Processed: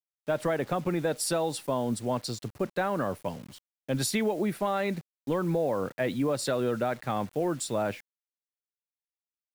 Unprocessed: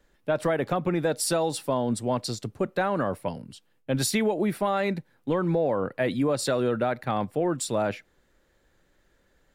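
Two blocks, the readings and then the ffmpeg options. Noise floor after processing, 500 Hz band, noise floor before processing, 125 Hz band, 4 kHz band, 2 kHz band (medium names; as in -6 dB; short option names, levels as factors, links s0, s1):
under -85 dBFS, -3.0 dB, -67 dBFS, -3.0 dB, -3.0 dB, -3.0 dB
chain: -af "acrusher=bits=7:mix=0:aa=0.000001,volume=0.708"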